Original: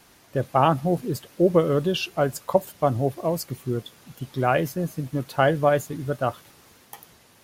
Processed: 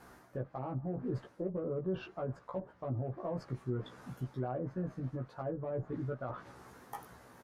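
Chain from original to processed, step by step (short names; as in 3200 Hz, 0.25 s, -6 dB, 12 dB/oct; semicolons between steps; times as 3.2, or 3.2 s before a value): treble ducked by the level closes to 610 Hz, closed at -17 dBFS; resonant high shelf 2000 Hz -10 dB, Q 1.5; reverse; compressor 4:1, threshold -32 dBFS, peak gain reduction 15.5 dB; reverse; added harmonics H 3 -27 dB, 8 -37 dB, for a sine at -18.5 dBFS; limiter -30.5 dBFS, peak gain reduction 11 dB; doubler 16 ms -2.5 dB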